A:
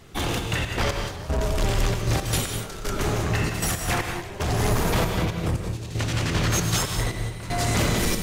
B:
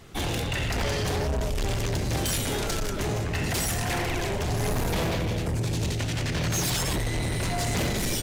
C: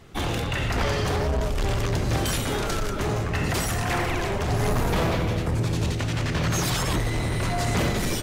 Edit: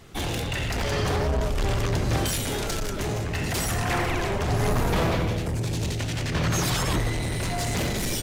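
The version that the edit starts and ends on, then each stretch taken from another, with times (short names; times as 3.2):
B
0.92–2.28 from C
3.63–5.34 from C, crossfade 0.24 s
6.32–7.13 from C
not used: A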